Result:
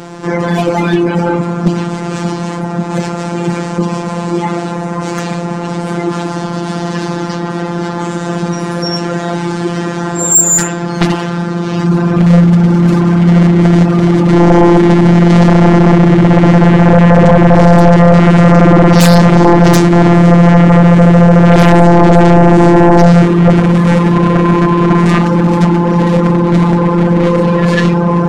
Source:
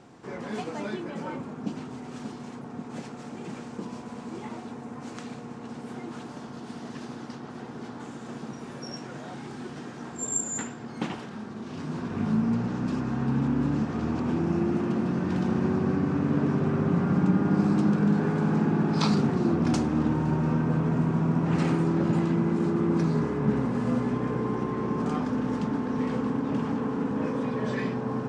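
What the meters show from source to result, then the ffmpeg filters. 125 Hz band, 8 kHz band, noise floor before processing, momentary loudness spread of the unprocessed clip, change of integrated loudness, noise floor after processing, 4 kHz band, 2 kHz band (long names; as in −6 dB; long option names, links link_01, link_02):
+20.5 dB, +21.5 dB, −41 dBFS, 15 LU, +18.0 dB, −19 dBFS, +20.0 dB, +21.0 dB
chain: -af "afftfilt=real='hypot(re,im)*cos(PI*b)':imag='0':win_size=1024:overlap=0.75,aeval=exprs='0.355*sin(PI/2*6.31*val(0)/0.355)':channel_layout=same,volume=7dB"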